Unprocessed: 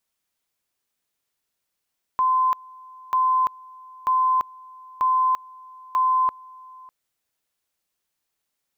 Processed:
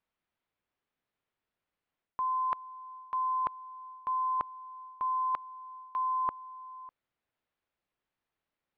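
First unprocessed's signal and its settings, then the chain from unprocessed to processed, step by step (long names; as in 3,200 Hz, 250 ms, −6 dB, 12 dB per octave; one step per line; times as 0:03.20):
tone at two levels in turn 1,030 Hz −16.5 dBFS, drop 24.5 dB, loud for 0.34 s, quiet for 0.60 s, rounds 5
reversed playback
downward compressor 6 to 1, threshold −28 dBFS
reversed playback
high-frequency loss of the air 380 metres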